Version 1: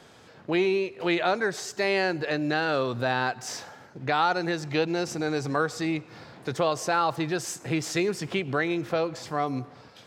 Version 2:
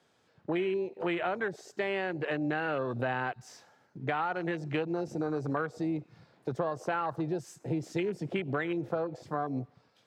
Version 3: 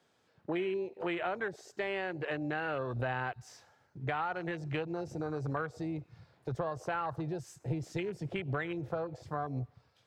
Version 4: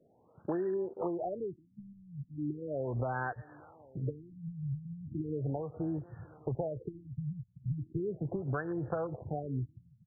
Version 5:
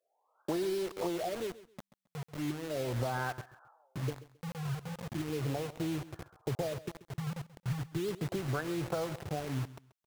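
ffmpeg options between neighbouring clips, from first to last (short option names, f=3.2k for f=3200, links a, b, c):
-filter_complex "[0:a]afwtdn=0.0251,lowshelf=f=60:g=-10.5,acrossover=split=120[a][b];[b]acompressor=threshold=-29dB:ratio=4[c];[a][c]amix=inputs=2:normalize=0"
-af "asubboost=boost=9.5:cutoff=74,volume=-2.5dB"
-af "acompressor=threshold=-44dB:ratio=2,aecho=1:1:1097:0.0708,afftfilt=real='re*lt(b*sr/1024,210*pow(1900/210,0.5+0.5*sin(2*PI*0.37*pts/sr)))':imag='im*lt(b*sr/1024,210*pow(1900/210,0.5+0.5*sin(2*PI*0.37*pts/sr)))':win_size=1024:overlap=0.75,volume=8dB"
-filter_complex "[0:a]acrossover=split=780[a][b];[a]acrusher=bits=6:mix=0:aa=0.000001[c];[c][b]amix=inputs=2:normalize=0,aecho=1:1:134|268:0.141|0.0325"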